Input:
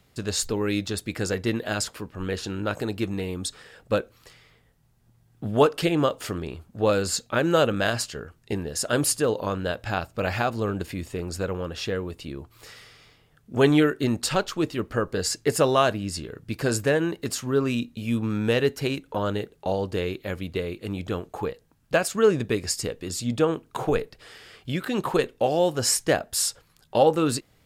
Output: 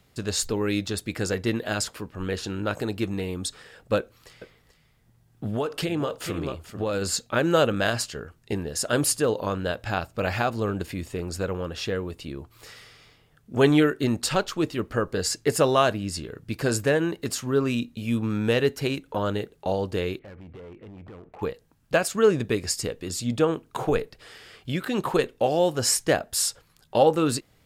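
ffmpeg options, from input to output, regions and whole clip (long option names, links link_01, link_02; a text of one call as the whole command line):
ffmpeg -i in.wav -filter_complex "[0:a]asettb=1/sr,asplit=3[link_01][link_02][link_03];[link_01]atrim=end=3.984[link_04];[link_02]atrim=start=3.98:end=7.02,asetpts=PTS-STARTPTS,afade=type=in:duration=0.004:curve=qsin,afade=type=out:start_time=3.036:duration=0.004:curve=qsin,aecho=1:1:435:0.251,atrim=end_sample=134064,acompressor=threshold=-22dB:ratio=10:attack=3.2:release=140:knee=1:detection=peak[link_05];[link_03]atrim=start=7.016[link_06];[link_04][link_05]acrossfade=duration=0.004:curve1=hsin:curve2=qsin[link_07];[link_07][link_06]acrossfade=duration=0.004:curve1=qsin:curve2=hsin,asettb=1/sr,asplit=3[link_08][link_09][link_10];[link_08]atrim=end=20.194[link_11];[link_09]atrim=start=20.19:end=21.42,asetpts=PTS-STARTPTS,afade=type=in:duration=0.004:curve=qsin,afade=type=out:start_time=1.226:duration=0.004:curve=qsin,lowpass=frequency=2200:width=0.5412,lowpass=frequency=2200:width=1.3066,acompressor=threshold=-38dB:ratio=5:attack=3.2:release=140:knee=1:detection=peak,asoftclip=type=hard:threshold=-39.5dB[link_12];[link_10]atrim=start=21.416[link_13];[link_11][link_12]acrossfade=duration=0.004:curve1=hsin:curve2=qsin[link_14];[link_14][link_13]acrossfade=duration=0.004:curve1=qsin:curve2=hsin" out.wav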